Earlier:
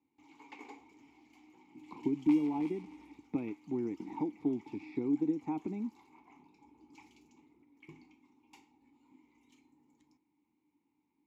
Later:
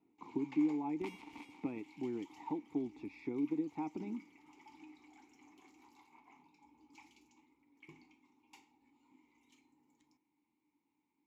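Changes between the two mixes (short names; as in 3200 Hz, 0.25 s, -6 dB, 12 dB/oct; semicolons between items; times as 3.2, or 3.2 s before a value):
speech: entry -1.70 s; second sound: entry -1.25 s; master: add low shelf 500 Hz -6.5 dB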